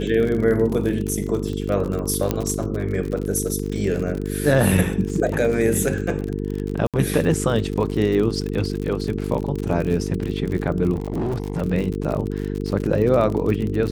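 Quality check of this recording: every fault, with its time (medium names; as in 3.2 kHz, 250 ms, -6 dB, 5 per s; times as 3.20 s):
buzz 50 Hz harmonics 9 -26 dBFS
crackle 50 per s -25 dBFS
2.31 s: pop -7 dBFS
6.87–6.94 s: dropout 67 ms
10.93–11.62 s: clipped -20 dBFS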